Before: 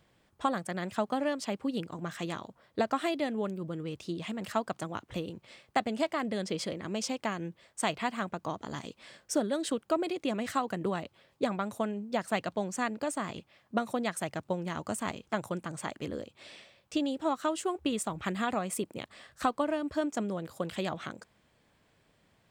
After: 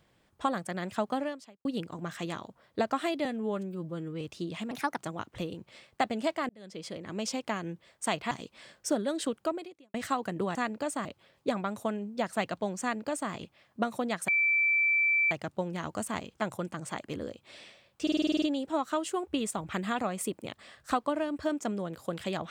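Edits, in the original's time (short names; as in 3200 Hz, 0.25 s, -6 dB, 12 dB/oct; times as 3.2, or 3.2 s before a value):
1.18–1.65 fade out quadratic
3.25–3.89 stretch 1.5×
4.39–4.74 speed 129%
6.25–6.99 fade in
8.07–8.76 cut
9.87–10.39 fade out quadratic
12.76–13.26 copy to 11
14.23 add tone 2330 Hz -22.5 dBFS 1.03 s
16.94 stutter 0.05 s, 9 plays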